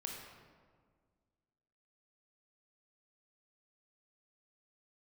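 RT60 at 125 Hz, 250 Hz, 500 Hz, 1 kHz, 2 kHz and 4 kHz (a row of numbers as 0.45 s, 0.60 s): 2.1 s, 2.2 s, 1.9 s, 1.6 s, 1.3 s, 0.95 s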